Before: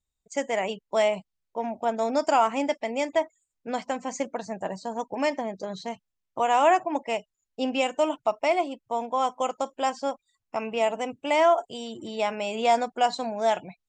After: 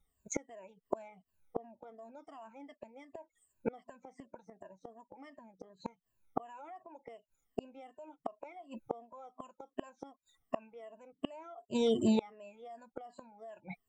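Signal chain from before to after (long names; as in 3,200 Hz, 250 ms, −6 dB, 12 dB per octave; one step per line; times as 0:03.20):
rippled gain that drifts along the octave scale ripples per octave 1.4, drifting −2.7 Hz, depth 21 dB
parametric band 4,800 Hz −12 dB 1.6 octaves
brickwall limiter −15 dBFS, peak gain reduction 11 dB
gate with flip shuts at −24 dBFS, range −33 dB
level +5.5 dB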